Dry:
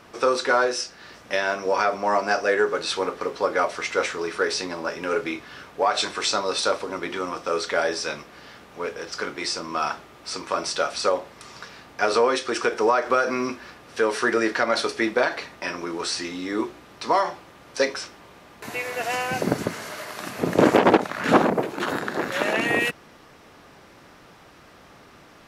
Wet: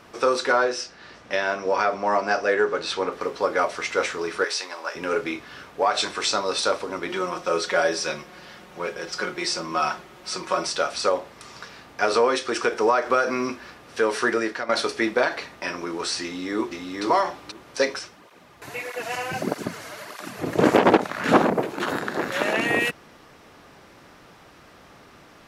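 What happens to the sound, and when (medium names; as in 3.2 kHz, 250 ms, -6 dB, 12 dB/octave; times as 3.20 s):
0.52–3.12 s: distance through air 55 m
4.44–4.95 s: high-pass 710 Hz
7.08–10.67 s: comb 5.5 ms
14.26–14.69 s: fade out, to -11 dB
16.23–17.03 s: echo throw 480 ms, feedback 10%, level -2.5 dB
17.99–20.64 s: cancelling through-zero flanger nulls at 1.6 Hz, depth 5.4 ms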